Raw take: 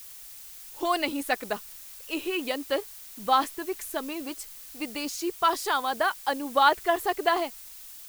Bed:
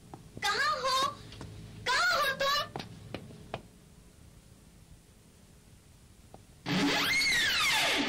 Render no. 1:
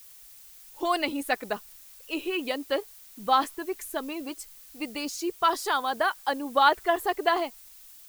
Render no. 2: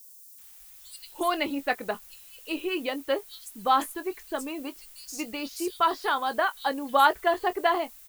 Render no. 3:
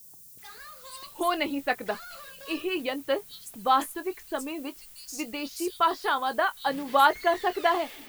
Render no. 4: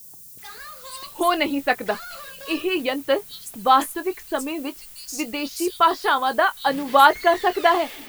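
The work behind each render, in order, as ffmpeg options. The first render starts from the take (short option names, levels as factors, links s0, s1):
-af "afftdn=nr=6:nf=-45"
-filter_complex "[0:a]asplit=2[s0][s1];[s1]adelay=22,volume=0.224[s2];[s0][s2]amix=inputs=2:normalize=0,acrossover=split=4800[s3][s4];[s3]adelay=380[s5];[s5][s4]amix=inputs=2:normalize=0"
-filter_complex "[1:a]volume=0.133[s0];[0:a][s0]amix=inputs=2:normalize=0"
-af "volume=2.11"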